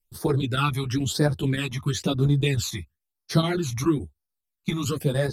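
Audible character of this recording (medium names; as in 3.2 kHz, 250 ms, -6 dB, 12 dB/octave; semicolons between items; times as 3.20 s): phasing stages 12, 1 Hz, lowest notch 480–2800 Hz; chopped level 7 Hz, depth 60%, duty 85%; a shimmering, thickened sound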